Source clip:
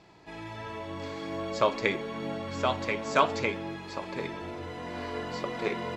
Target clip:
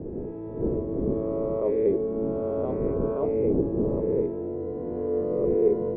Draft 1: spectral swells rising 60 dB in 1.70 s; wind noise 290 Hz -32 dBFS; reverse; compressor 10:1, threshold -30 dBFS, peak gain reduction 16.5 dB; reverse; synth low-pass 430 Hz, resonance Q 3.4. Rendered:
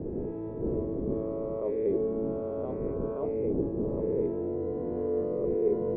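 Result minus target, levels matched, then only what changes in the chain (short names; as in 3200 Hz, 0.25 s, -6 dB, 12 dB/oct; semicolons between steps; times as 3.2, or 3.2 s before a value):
compressor: peak gain reduction +6 dB
change: compressor 10:1, threshold -23.5 dBFS, peak gain reduction 11 dB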